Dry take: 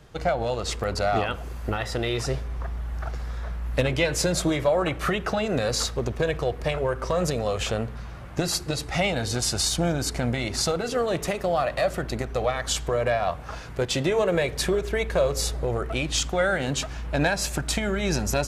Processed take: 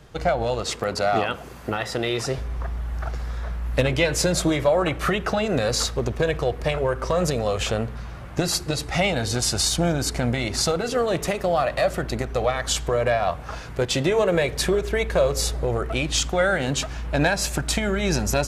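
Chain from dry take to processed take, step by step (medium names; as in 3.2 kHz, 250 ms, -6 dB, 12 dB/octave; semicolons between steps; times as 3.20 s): 0.63–2.38 s: high-pass 130 Hz 12 dB/octave; trim +2.5 dB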